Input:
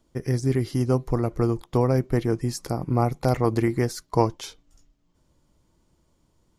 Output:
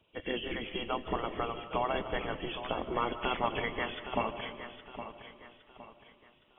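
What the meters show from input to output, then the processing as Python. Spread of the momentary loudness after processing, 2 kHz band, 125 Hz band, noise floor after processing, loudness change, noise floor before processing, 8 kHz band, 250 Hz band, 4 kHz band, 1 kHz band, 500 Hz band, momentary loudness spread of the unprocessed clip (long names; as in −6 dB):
19 LU, +2.0 dB, −22.5 dB, −65 dBFS, −10.5 dB, −68 dBFS, below −40 dB, −14.5 dB, +2.0 dB, −3.5 dB, −10.0 dB, 5 LU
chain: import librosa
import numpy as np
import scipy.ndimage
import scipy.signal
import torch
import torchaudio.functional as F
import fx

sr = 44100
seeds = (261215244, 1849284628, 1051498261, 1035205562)

y = fx.freq_compress(x, sr, knee_hz=2200.0, ratio=4.0)
y = fx.spec_gate(y, sr, threshold_db=-10, keep='weak')
y = fx.echo_feedback(y, sr, ms=814, feedback_pct=38, wet_db=-11)
y = fx.rev_freeverb(y, sr, rt60_s=1.4, hf_ratio=0.4, predelay_ms=105, drr_db=12.0)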